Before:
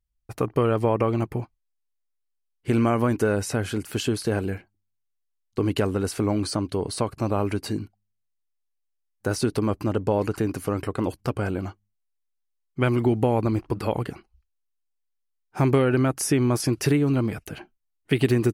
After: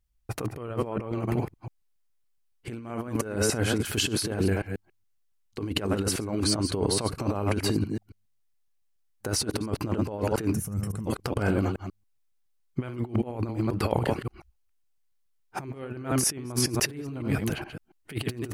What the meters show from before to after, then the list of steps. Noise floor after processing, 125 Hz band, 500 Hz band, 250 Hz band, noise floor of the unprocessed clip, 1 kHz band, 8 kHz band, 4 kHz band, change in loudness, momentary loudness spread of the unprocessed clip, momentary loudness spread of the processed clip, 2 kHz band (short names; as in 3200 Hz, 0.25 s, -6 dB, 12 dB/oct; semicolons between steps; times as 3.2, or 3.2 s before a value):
-69 dBFS, -4.5 dB, -6.0 dB, -5.0 dB, -76 dBFS, -5.5 dB, +3.5 dB, +3.5 dB, -4.0 dB, 12 LU, 13 LU, -2.0 dB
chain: reverse delay 0.14 s, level -8.5 dB; negative-ratio compressor -27 dBFS, ratio -0.5; spectral gain 10.54–11.07, 230–5200 Hz -16 dB